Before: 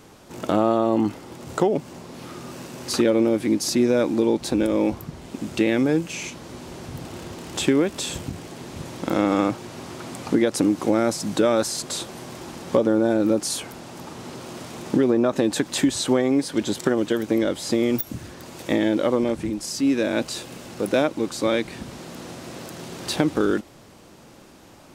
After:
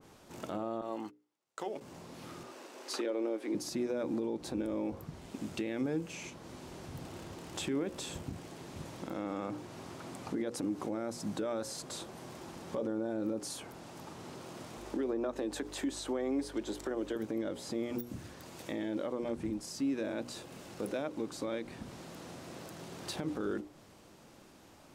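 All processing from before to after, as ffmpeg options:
-filter_complex "[0:a]asettb=1/sr,asplit=3[a][b][c];[a]atrim=end=0.814[d];[b]atrim=start=0.81:end=1.81,asetpts=PTS-STARTPTS,afade=t=in:d=0.004:c=qsin,afade=t=out:st=0.996:d=0.004:c=qsin,highpass=f=1.1k:p=1,agate=range=-33dB:threshold=-37dB:ratio=16:release=100:detection=peak[e];[c]atrim=start=1.806[f];[d][e]acrossfade=d=0.004:c1=hsin:c2=qsin[g];[g][f]acrossfade=d=0.004:c1=qsin:c2=hsin,asettb=1/sr,asplit=3[h][i][j];[h]atrim=end=2.434[k];[i]atrim=start=2.43:end=3.55,asetpts=PTS-STARTPTS,afade=t=in:d=0.004:c=qsin,afade=t=out:st=1.116:d=0.004:c=qsin,highpass=f=320:w=0.5412,highpass=f=320:w=1.3066,highshelf=f=8.1k:g=-7.5[l];[j]atrim=start=3.546[m];[k][l]acrossfade=d=0.004:c1=hsin:c2=qsin[n];[n][m]acrossfade=d=0.004:c1=qsin:c2=hsin,asettb=1/sr,asplit=3[o][p][q];[o]atrim=end=14.774[r];[p]atrim=start=14.77:end=17.16,asetpts=PTS-STARTPTS,afade=t=in:d=0.004:c=qsin,afade=t=out:st=2.386:d=0.004:c=qsin,highpass=f=260:w=0.5412,highpass=f=260:w=1.3066,aeval=exprs='val(0)+0.00708*(sin(2*PI*50*n/s)+sin(2*PI*2*50*n/s)/2+sin(2*PI*3*50*n/s)/3+sin(2*PI*4*50*n/s)/4+sin(2*PI*5*50*n/s)/5)':c=same[s];[q]atrim=start=17.156[t];[r][s]acrossfade=d=0.004:c1=hsin:c2=qsin[u];[u][t]acrossfade=d=0.004:c1=qsin:c2=hsin,bandreject=f=60:t=h:w=6,bandreject=f=120:t=h:w=6,bandreject=f=180:t=h:w=6,bandreject=f=240:t=h:w=6,bandreject=f=300:t=h:w=6,bandreject=f=360:t=h:w=6,bandreject=f=420:t=h:w=6,bandreject=f=480:t=h:w=6,bandreject=f=540:t=h:w=6,alimiter=limit=-16.5dB:level=0:latency=1:release=103,adynamicequalizer=threshold=0.00631:dfrequency=1700:dqfactor=0.7:tfrequency=1700:tqfactor=0.7:attack=5:release=100:ratio=0.375:range=3:mode=cutabove:tftype=highshelf,volume=-9dB"

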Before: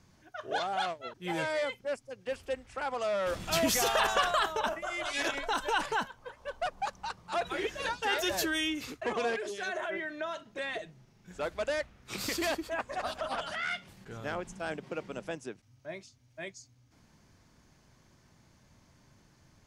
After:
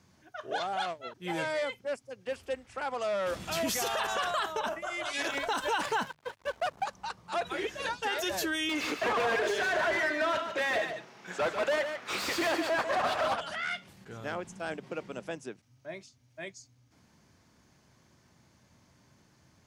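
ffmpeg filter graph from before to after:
-filter_complex "[0:a]asettb=1/sr,asplit=3[a][b][c];[a]atrim=end=5.274[d];[b]atrim=start=5.27:end=6.84,asetpts=PTS-STARTPTS,afade=t=in:d=0.004:c=qsin,afade=t=out:st=1.566:d=0.004:c=qsin,aeval=exprs='sgn(val(0))*max(abs(val(0))-0.002,0)':c=same,acontrast=85[e];[c]atrim=start=6.836[f];[d][e]acrossfade=d=0.004:c1=hsin:c2=qsin[g];[g][f]acrossfade=d=0.004:c1=qsin:c2=hsin,asettb=1/sr,asplit=3[h][i][j];[h]atrim=end=8.694[k];[i]atrim=start=8.69:end=13.34,asetpts=PTS-STARTPTS,afade=t=in:d=0.004:c=qsin,afade=t=out:st=4.646:d=0.004:c=qsin,highpass=f=470:p=1,asplit=2[l][m];[m]highpass=f=720:p=1,volume=28dB,asoftclip=type=tanh:threshold=-20dB[n];[l][n]amix=inputs=2:normalize=0,lowpass=f=1.6k:p=1,volume=-6dB,aecho=1:1:146:0.398,atrim=end_sample=205065[o];[j]atrim=start=13.336[p];[k][o]acrossfade=d=0.004:c1=hsin:c2=qsin[q];[q][p]acrossfade=d=0.004:c1=qsin:c2=hsin,highpass=69,bandreject=f=50:t=h:w=6,bandreject=f=100:t=h:w=6,bandreject=f=150:t=h:w=6,alimiter=limit=-22dB:level=0:latency=1:release=58"

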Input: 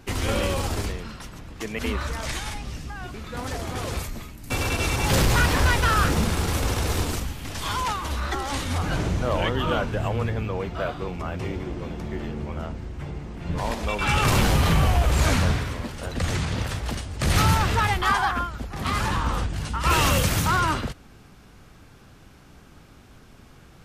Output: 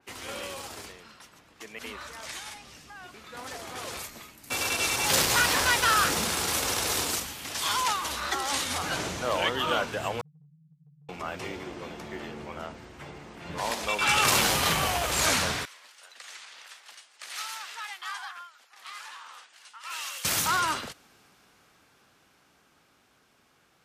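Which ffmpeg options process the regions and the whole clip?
-filter_complex "[0:a]asettb=1/sr,asplit=3[a][b][c];[a]atrim=end=10.214[d];[b]atrim=start=10.21:end=11.09,asetpts=PTS-STARTPTS,afade=t=in:d=0.004:c=qsin,afade=t=out:st=0.876:d=0.004:c=qsin,asuperpass=centerf=150:order=8:qfactor=5.5,acompressor=threshold=-40dB:ratio=6:attack=3.2:release=140:knee=1:detection=peak[e];[c]atrim=start=11.086[f];[d][e]acrossfade=d=0.004:c1=hsin:c2=qsin[g];[g][f]acrossfade=d=0.004:c1=qsin:c2=hsin,asettb=1/sr,asplit=3[h][i][j];[h]atrim=end=15.654[k];[i]atrim=start=15.65:end=20.25,asetpts=PTS-STARTPTS,afade=t=in:d=0.004:c=qsin,afade=t=out:st=4.596:d=0.004:c=qsin,bandpass=f=1.1k:t=q:w=0.56,aderivative[l];[j]atrim=start=20.246[m];[k][l]acrossfade=d=0.004:c1=hsin:c2=qsin[n];[n][m]acrossfade=d=0.004:c1=qsin:c2=hsin,highpass=f=680:p=1,dynaudnorm=f=730:g=11:m=10.5dB,adynamicequalizer=threshold=0.0251:dfrequency=3400:dqfactor=0.7:tfrequency=3400:tqfactor=0.7:attack=5:release=100:ratio=0.375:range=2.5:mode=boostabove:tftype=highshelf,volume=-8.5dB"

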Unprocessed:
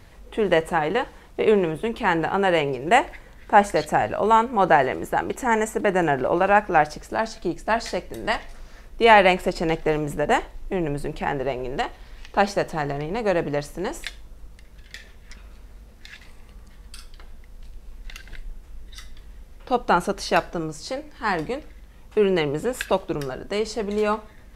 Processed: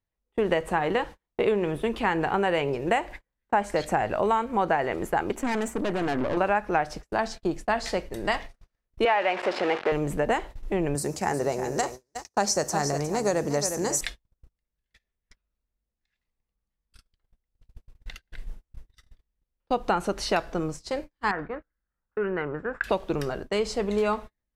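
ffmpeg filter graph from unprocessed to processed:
-filter_complex "[0:a]asettb=1/sr,asplit=3[a][b][c];[a]atrim=end=5.314[d];[b]atrim=start=5.31:end=6.37,asetpts=PTS-STARTPTS,afade=t=in:d=0.004:c=qsin,afade=t=out:st=1.056:d=0.004:c=qsin,equalizer=f=260:w=3.8:g=12,aeval=exprs='(tanh(14.1*val(0)+0.6)-tanh(0.6))/14.1':c=same[e];[c]atrim=start=6.366[f];[d][e]acrossfade=d=0.004:c1=hsin:c2=qsin[g];[g][f]acrossfade=d=0.004:c1=qsin:c2=hsin,asettb=1/sr,asplit=3[h][i][j];[h]atrim=end=9.054[k];[i]atrim=start=9.05:end=9.92,asetpts=PTS-STARTPTS,afade=t=in:d=0.004:c=qsin,afade=t=out:st=0.866:d=0.004:c=qsin,aeval=exprs='val(0)+0.5*0.106*sgn(val(0))':c=same,highpass=480,lowpass=2.7k[l];[j]atrim=start=9.916[m];[k][l]acrossfade=d=0.004:c1=hsin:c2=qsin[n];[n][m]acrossfade=d=0.004:c1=qsin:c2=hsin,asettb=1/sr,asplit=3[o][p][q];[o]atrim=end=10.954[r];[p]atrim=start=10.95:end=14.01,asetpts=PTS-STARTPTS,afade=t=in:d=0.004:c=qsin,afade=t=out:st=3.056:d=0.004:c=qsin,highpass=f=62:w=0.5412,highpass=f=62:w=1.3066,highshelf=f=4.4k:t=q:w=3:g=12,aecho=1:1:359:0.299,atrim=end_sample=134946[s];[q]atrim=start=14.006[t];[r][s]acrossfade=d=0.004:c1=hsin:c2=qsin[u];[u][t]acrossfade=d=0.004:c1=qsin:c2=hsin,asettb=1/sr,asplit=3[v][w][x];[v]atrim=end=21.314[y];[w]atrim=start=21.31:end=22.84,asetpts=PTS-STARTPTS,afade=t=in:d=0.004:c=qsin,afade=t=out:st=1.526:d=0.004:c=qsin,acompressor=threshold=-42dB:ratio=1.5:attack=3.2:release=140:knee=1:detection=peak,lowpass=f=1.5k:t=q:w=5.6[z];[x]atrim=start=22.836[aa];[y][z]acrossfade=d=0.004:c1=hsin:c2=qsin[ab];[ab][aa]acrossfade=d=0.004:c1=qsin:c2=hsin,agate=range=-39dB:threshold=-34dB:ratio=16:detection=peak,highshelf=f=8.7k:g=-3.5,acompressor=threshold=-20dB:ratio=6"

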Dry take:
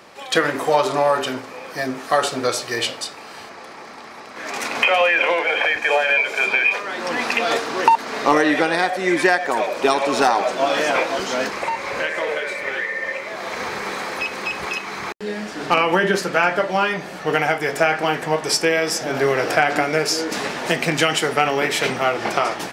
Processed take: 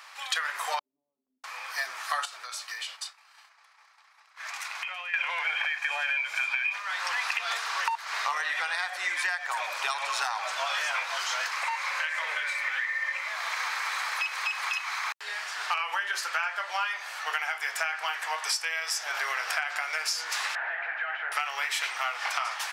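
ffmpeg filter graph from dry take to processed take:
-filter_complex "[0:a]asettb=1/sr,asplit=3[a][b][c];[a]atrim=end=0.794[d];[b]atrim=start=0.79:end=1.44,asetpts=PTS-STARTPTS,afade=t=in:d=0.004:c=qsin,afade=t=out:st=0.646:d=0.004:c=qsin,asuperpass=centerf=180:order=8:qfactor=1.5,acompressor=mode=upward:threshold=-41dB:ratio=2.5:attack=3.2:release=140:knee=2.83:detection=peak[e];[c]atrim=start=1.436[f];[d][e]acrossfade=d=0.004:c1=hsin:c2=qsin[g];[g][f]acrossfade=d=0.004:c1=qsin:c2=hsin,asettb=1/sr,asplit=3[h][i][j];[h]atrim=end=2.254[k];[i]atrim=start=2.25:end=5.14,asetpts=PTS-STARTPTS,afade=t=in:d=0.004:c=qsin,afade=t=out:st=2.886:d=0.004:c=qsin,agate=range=-33dB:threshold=-27dB:ratio=3:release=100:detection=peak,lowshelf=f=190:g=-9,acompressor=threshold=-32dB:ratio=6:attack=3.2:release=140:knee=1:detection=peak[l];[j]atrim=start=5.136[m];[k][l]acrossfade=d=0.004:c1=hsin:c2=qsin[n];[n][m]acrossfade=d=0.004:c1=qsin:c2=hsin,asettb=1/sr,asplit=3[o][p][q];[o]atrim=end=20.554[r];[p]atrim=start=20.55:end=21.32,asetpts=PTS-STARTPTS,afade=t=in:d=0.004:c=qsin,afade=t=out:st=0.766:d=0.004:c=qsin,acompressor=threshold=-20dB:ratio=3:attack=3.2:release=140:knee=1:detection=peak,volume=27dB,asoftclip=hard,volume=-27dB,highpass=320,equalizer=f=360:t=q:w=4:g=6,equalizer=f=690:t=q:w=4:g=9,equalizer=f=1.1k:t=q:w=4:g=-7,equalizer=f=1.6k:t=q:w=4:g=10,lowpass=f=2.1k:w=0.5412,lowpass=f=2.1k:w=1.3066[s];[q]atrim=start=21.316[t];[r][s]acrossfade=d=0.004:c1=hsin:c2=qsin[u];[u][t]acrossfade=d=0.004:c1=qsin:c2=hsin,highpass=f=990:w=0.5412,highpass=f=990:w=1.3066,acompressor=threshold=-27dB:ratio=5"

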